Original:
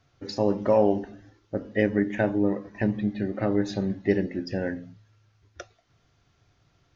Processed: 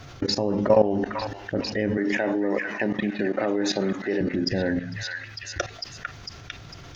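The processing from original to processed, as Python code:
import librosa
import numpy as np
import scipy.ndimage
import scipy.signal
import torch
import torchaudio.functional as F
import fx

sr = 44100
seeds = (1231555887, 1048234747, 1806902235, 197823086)

y = fx.highpass(x, sr, hz=330.0, slope=12, at=(1.97, 4.21))
y = fx.level_steps(y, sr, step_db=19)
y = fx.echo_stepped(y, sr, ms=451, hz=1700.0, octaves=0.7, feedback_pct=70, wet_db=-6.5)
y = fx.env_flatten(y, sr, amount_pct=50)
y = y * 10.0 ** (4.0 / 20.0)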